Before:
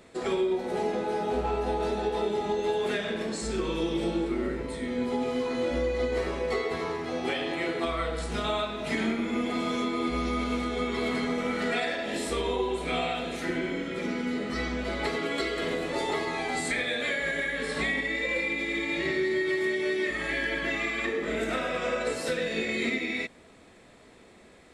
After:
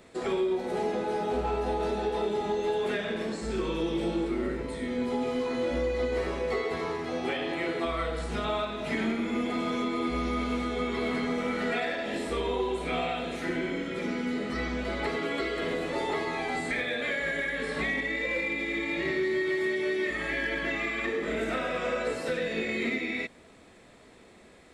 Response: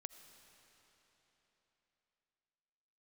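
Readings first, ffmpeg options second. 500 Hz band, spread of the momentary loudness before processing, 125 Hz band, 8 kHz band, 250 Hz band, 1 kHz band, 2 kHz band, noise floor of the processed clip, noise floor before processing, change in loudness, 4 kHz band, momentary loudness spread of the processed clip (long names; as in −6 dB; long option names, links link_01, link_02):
−0.5 dB, 4 LU, −0.5 dB, −6.0 dB, −0.5 dB, −0.5 dB, −1.0 dB, −54 dBFS, −54 dBFS, −1.0 dB, −3.0 dB, 3 LU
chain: -filter_complex "[0:a]acrossover=split=3200[link_01][link_02];[link_02]acompressor=threshold=-46dB:ratio=4:attack=1:release=60[link_03];[link_01][link_03]amix=inputs=2:normalize=0,asplit=2[link_04][link_05];[link_05]asoftclip=type=hard:threshold=-25.5dB,volume=-7dB[link_06];[link_04][link_06]amix=inputs=2:normalize=0,volume=-3.5dB"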